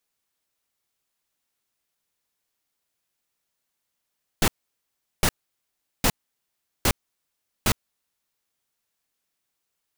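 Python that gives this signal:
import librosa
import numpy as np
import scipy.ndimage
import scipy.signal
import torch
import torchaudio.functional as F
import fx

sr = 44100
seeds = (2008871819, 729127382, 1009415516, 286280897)

y = fx.noise_burst(sr, seeds[0], colour='pink', on_s=0.06, off_s=0.75, bursts=5, level_db=-19.0)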